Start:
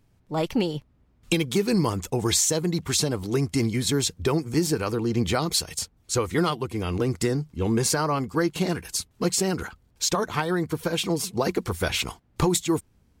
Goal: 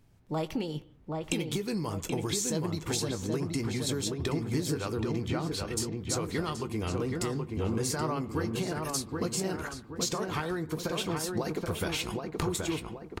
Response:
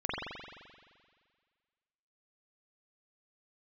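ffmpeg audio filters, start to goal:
-filter_complex "[0:a]asettb=1/sr,asplit=3[link_01][link_02][link_03];[link_01]atrim=end=5.284[link_04];[link_02]atrim=start=5.28:end=5.77,asetpts=PTS-STARTPTS,afade=type=in:duration=0.004:curve=qsin,afade=type=out:start_time=0.486:duration=0.004:curve=qsin,bass=frequency=250:gain=3,treble=frequency=4000:gain=-14[link_05];[link_03]atrim=start=5.766[link_06];[link_04][link_05]acrossfade=duration=0.004:curve1=hsin:curve2=qsin[link_07];[link_07][link_06]acrossfade=duration=0.004:curve1=qsin:curve2=hsin,acompressor=threshold=-30dB:ratio=6,asplit=2[link_08][link_09];[link_09]adelay=19,volume=-12.5dB[link_10];[link_08][link_10]amix=inputs=2:normalize=0,asplit=2[link_11][link_12];[link_12]adelay=776,lowpass=frequency=2000:poles=1,volume=-3dB,asplit=2[link_13][link_14];[link_14]adelay=776,lowpass=frequency=2000:poles=1,volume=0.44,asplit=2[link_15][link_16];[link_16]adelay=776,lowpass=frequency=2000:poles=1,volume=0.44,asplit=2[link_17][link_18];[link_18]adelay=776,lowpass=frequency=2000:poles=1,volume=0.44,asplit=2[link_19][link_20];[link_20]adelay=776,lowpass=frequency=2000:poles=1,volume=0.44,asplit=2[link_21][link_22];[link_22]adelay=776,lowpass=frequency=2000:poles=1,volume=0.44[link_23];[link_11][link_13][link_15][link_17][link_19][link_21][link_23]amix=inputs=7:normalize=0,asplit=2[link_24][link_25];[1:a]atrim=start_sample=2205,afade=type=out:start_time=0.22:duration=0.01,atrim=end_sample=10143,adelay=32[link_26];[link_25][link_26]afir=irnorm=-1:irlink=0,volume=-24.5dB[link_27];[link_24][link_27]amix=inputs=2:normalize=0"

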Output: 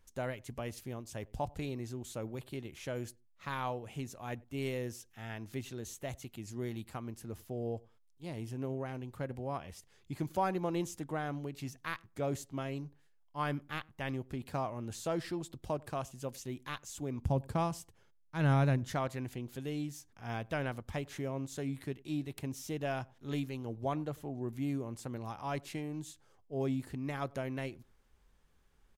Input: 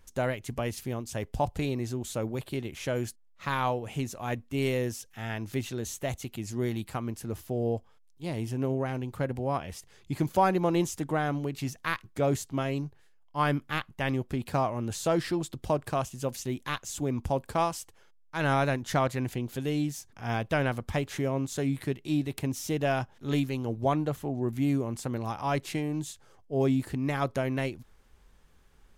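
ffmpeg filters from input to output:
ffmpeg -i in.wav -filter_complex "[0:a]asettb=1/sr,asplit=3[link_01][link_02][link_03];[link_01]atrim=end=17.224[link_04];[link_02]atrim=start=17.22:end=18.93,asetpts=PTS-STARTPTS,afade=type=in:duration=0.004:curve=qsin,afade=type=out:start_time=1.706:duration=0.004:curve=qsin,equalizer=frequency=120:width=0.55:gain=12[link_05];[link_03]atrim=start=18.926[link_06];[link_04][link_05]acrossfade=duration=0.004:curve1=hsin:curve2=qsin[link_07];[link_07][link_06]acrossfade=duration=0.004:curve1=qsin:curve2=hsin,asplit=2[link_08][link_09];[link_09]adelay=96,lowpass=frequency=820:poles=1,volume=-23dB,asplit=2[link_10][link_11];[link_11]adelay=96,lowpass=frequency=820:poles=1,volume=0.18[link_12];[link_08][link_10][link_12]amix=inputs=3:normalize=0,volume=-8.5dB" out.wav

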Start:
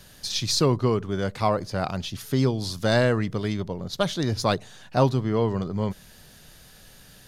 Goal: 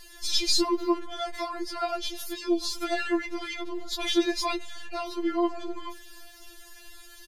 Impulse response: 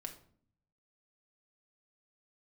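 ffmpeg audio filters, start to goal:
-filter_complex "[0:a]asettb=1/sr,asplit=3[link_01][link_02][link_03];[link_01]atrim=end=2.744[link_04];[link_02]atrim=start=2.74:end=5.06,asetpts=PTS-STARTPTS,afade=type=in:duration=0.004:curve=qsin,afade=type=out:start_time=2.316:duration=0.004:curve=qsin,equalizer=frequency=2300:width=2.6:gain=7.5[link_05];[link_03]atrim=start=5.056[link_06];[link_04][link_05]acrossfade=duration=0.004:curve1=hsin:curve2=qsin[link_07];[link_07][link_06]acrossfade=duration=0.004:curve1=qsin:curve2=hsin,alimiter=limit=-17dB:level=0:latency=1:release=23,asplit=2[link_08][link_09];[link_09]adelay=300,highpass=300,lowpass=3400,asoftclip=type=hard:threshold=-39.5dB,volume=-16dB[link_10];[link_08][link_10]amix=inputs=2:normalize=0,afftfilt=real='re*4*eq(mod(b,16),0)':imag='im*4*eq(mod(b,16),0)':win_size=2048:overlap=0.75,volume=4dB"

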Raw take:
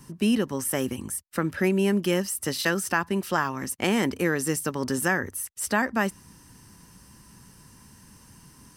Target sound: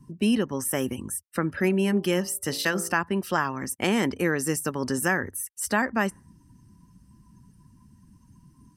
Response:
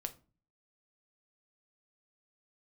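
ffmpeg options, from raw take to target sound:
-filter_complex "[0:a]asettb=1/sr,asplit=3[link_01][link_02][link_03];[link_01]atrim=end=1.614[link_04];[link_02]atrim=start=1.61:end=2.93,asetpts=PTS-STARTPTS,afade=type=in:duration=0.004:curve=qsin,afade=type=out:start_time=1.316:duration=0.004:curve=qsin,bandreject=frequency=56.5:width_type=h:width=4,bandreject=frequency=113:width_type=h:width=4,bandreject=frequency=169.5:width_type=h:width=4,bandreject=frequency=226:width_type=h:width=4,bandreject=frequency=282.5:width_type=h:width=4,bandreject=frequency=339:width_type=h:width=4,bandreject=frequency=395.5:width_type=h:width=4,bandreject=frequency=452:width_type=h:width=4,bandreject=frequency=508.5:width_type=h:width=4,bandreject=frequency=565:width_type=h:width=4,bandreject=frequency=621.5:width_type=h:width=4,bandreject=frequency=678:width_type=h:width=4,bandreject=frequency=734.5:width_type=h:width=4,bandreject=frequency=791:width_type=h:width=4,bandreject=frequency=847.5:width_type=h:width=4,bandreject=frequency=904:width_type=h:width=4,bandreject=frequency=960.5:width_type=h:width=4,bandreject=frequency=1017:width_type=h:width=4,bandreject=frequency=1073.5:width_type=h:width=4,bandreject=frequency=1130:width_type=h:width=4,bandreject=frequency=1186.5:width_type=h:width=4,bandreject=frequency=1243:width_type=h:width=4,bandreject=frequency=1299.5:width_type=h:width=4,bandreject=frequency=1356:width_type=h:width=4,bandreject=frequency=1412.5:width_type=h:width=4,bandreject=frequency=1469:width_type=h:width=4[link_05];[link_03]atrim=start=2.926[link_06];[link_04][link_05]acrossfade=duration=0.004:curve1=hsin:curve2=qsin[link_07];[link_07][link_06]acrossfade=duration=0.004:curve1=qsin:curve2=hsin,afftdn=noise_reduction=18:noise_floor=-48"

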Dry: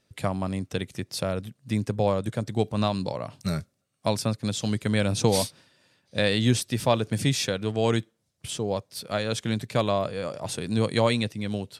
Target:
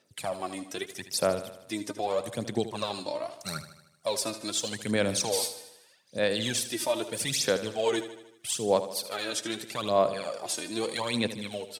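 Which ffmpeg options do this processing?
ffmpeg -i in.wav -filter_complex "[0:a]highpass=140,bass=frequency=250:gain=-10,treble=frequency=4000:gain=6,alimiter=limit=-17dB:level=0:latency=1:release=27,aphaser=in_gain=1:out_gain=1:delay=3.3:decay=0.7:speed=0.8:type=sinusoidal,asplit=2[link_01][link_02];[link_02]aecho=0:1:77|154|231|308|385|462:0.237|0.133|0.0744|0.0416|0.0233|0.0131[link_03];[link_01][link_03]amix=inputs=2:normalize=0,volume=-4dB" out.wav

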